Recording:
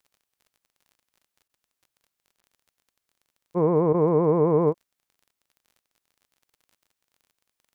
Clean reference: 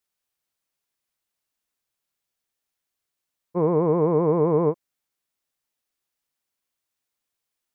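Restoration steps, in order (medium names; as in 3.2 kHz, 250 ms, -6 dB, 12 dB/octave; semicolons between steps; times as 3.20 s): de-click; interpolate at 1.48/2.41/3.93/4.73 s, 12 ms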